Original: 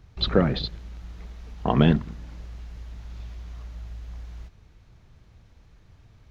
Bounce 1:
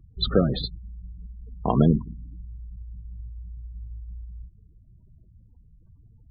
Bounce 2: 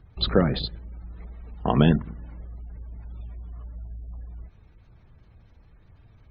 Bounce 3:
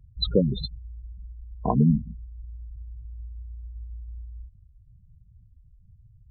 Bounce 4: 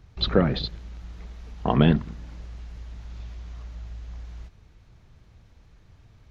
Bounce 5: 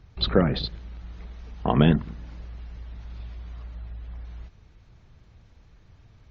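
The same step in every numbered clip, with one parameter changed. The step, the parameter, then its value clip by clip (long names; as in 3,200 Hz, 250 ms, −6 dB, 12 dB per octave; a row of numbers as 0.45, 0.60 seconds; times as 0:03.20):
gate on every frequency bin, under each frame's peak: −20, −35, −10, −60, −45 decibels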